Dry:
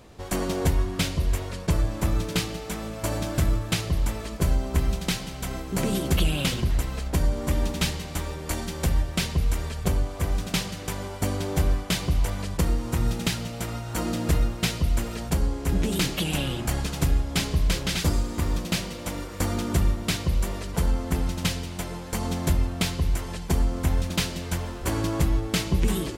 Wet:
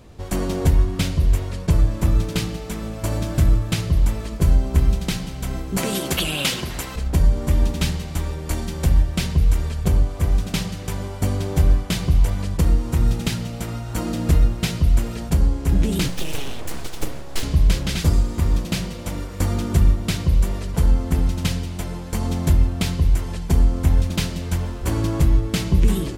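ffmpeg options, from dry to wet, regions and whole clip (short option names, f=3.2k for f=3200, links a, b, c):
-filter_complex "[0:a]asettb=1/sr,asplit=3[a][b][c];[a]atrim=end=5.774[d];[b]atrim=start=5.77:end=6.96,asetpts=PTS-STARTPTS,afade=t=in:d=0.004:c=qsin,afade=t=out:st=1.186:d=0.004:c=qsin,highpass=f=780:p=1,acontrast=78[e];[c]atrim=start=6.956[f];[d][e]acrossfade=d=0.004:c1=hsin:c2=qsin[g];[g][f]acrossfade=d=0.004:c1=qsin:c2=hsin,asettb=1/sr,asplit=3[h][i][j];[h]atrim=end=16.084[k];[i]atrim=start=16.08:end=17.43,asetpts=PTS-STARTPTS,afade=t=in:d=0.004:c=qsin,afade=t=out:st=1.346:d=0.004:c=qsin,highpass=f=130:w=0.5412,highpass=f=130:w=1.3066,aeval=exprs='abs(val(0))':c=same[l];[j]atrim=start=17.426[m];[k][l]acrossfade=d=0.004:c1=hsin:c2=qsin[n];[n][m]acrossfade=d=0.004:c1=qsin:c2=hsin,lowshelf=f=260:g=8,bandreject=f=59.21:t=h:w=4,bandreject=f=118.42:t=h:w=4,bandreject=f=177.63:t=h:w=4,bandreject=f=236.84:t=h:w=4,bandreject=f=296.05:t=h:w=4,bandreject=f=355.26:t=h:w=4,bandreject=f=414.47:t=h:w=4,bandreject=f=473.68:t=h:w=4,bandreject=f=532.89:t=h:w=4,bandreject=f=592.1:t=h:w=4,bandreject=f=651.31:t=h:w=4,bandreject=f=710.52:t=h:w=4,bandreject=f=769.73:t=h:w=4,bandreject=f=828.94:t=h:w=4,bandreject=f=888.15:t=h:w=4,bandreject=f=947.36:t=h:w=4,bandreject=f=1.00657k:t=h:w=4,bandreject=f=1.06578k:t=h:w=4,bandreject=f=1.12499k:t=h:w=4,bandreject=f=1.1842k:t=h:w=4,bandreject=f=1.24341k:t=h:w=4,bandreject=f=1.30262k:t=h:w=4,bandreject=f=1.36183k:t=h:w=4,bandreject=f=1.42104k:t=h:w=4,bandreject=f=1.48025k:t=h:w=4,bandreject=f=1.53946k:t=h:w=4,bandreject=f=1.59867k:t=h:w=4,bandreject=f=1.65788k:t=h:w=4,bandreject=f=1.71709k:t=h:w=4,bandreject=f=1.7763k:t=h:w=4,bandreject=f=1.83551k:t=h:w=4,bandreject=f=1.89472k:t=h:w=4,bandreject=f=1.95393k:t=h:w=4,bandreject=f=2.01314k:t=h:w=4,bandreject=f=2.07235k:t=h:w=4,bandreject=f=2.13156k:t=h:w=4,bandreject=f=2.19077k:t=h:w=4"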